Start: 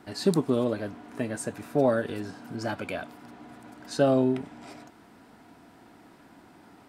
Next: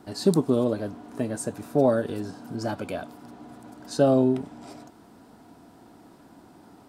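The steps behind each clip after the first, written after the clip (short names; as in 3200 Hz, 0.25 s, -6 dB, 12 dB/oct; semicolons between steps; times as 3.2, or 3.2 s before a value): bell 2100 Hz -9 dB 1.3 oct; gain +3 dB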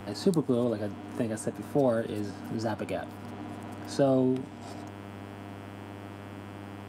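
buzz 100 Hz, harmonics 34, -47 dBFS -5 dB/oct; three-band squash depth 40%; gain -2.5 dB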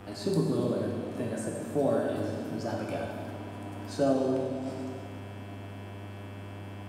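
plate-style reverb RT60 2.2 s, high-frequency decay 0.8×, DRR -2.5 dB; gain -5 dB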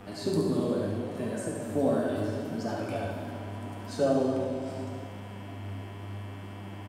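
flange 0.76 Hz, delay 3.9 ms, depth 9.4 ms, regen +50%; echo 71 ms -7 dB; gain +4 dB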